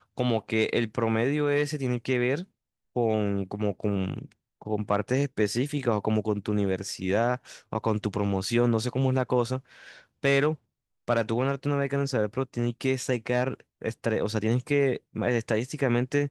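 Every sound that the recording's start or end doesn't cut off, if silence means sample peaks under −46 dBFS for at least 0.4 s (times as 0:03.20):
0:02.96–0:10.55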